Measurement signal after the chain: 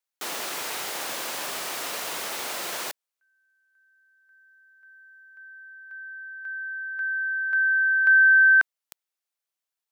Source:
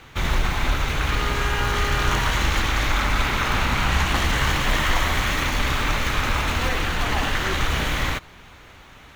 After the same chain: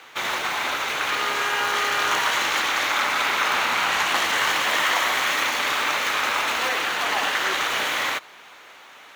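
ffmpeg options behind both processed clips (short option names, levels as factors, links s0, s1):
-af "highpass=510,volume=1.33"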